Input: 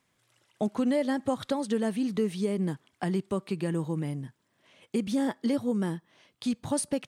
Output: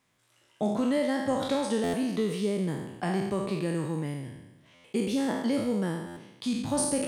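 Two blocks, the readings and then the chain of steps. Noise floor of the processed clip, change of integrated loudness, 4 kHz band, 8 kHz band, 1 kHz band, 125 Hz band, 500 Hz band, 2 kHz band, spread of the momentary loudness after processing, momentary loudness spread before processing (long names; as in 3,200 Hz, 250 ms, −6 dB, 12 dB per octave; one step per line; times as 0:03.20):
−66 dBFS, +0.5 dB, +3.5 dB, +4.0 dB, +3.0 dB, 0.0 dB, +1.5 dB, +3.0 dB, 9 LU, 7 LU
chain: peak hold with a decay on every bin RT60 1.06 s
buffer that repeats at 0:01.83/0:04.74/0:06.06, samples 512, times 8
level −1.5 dB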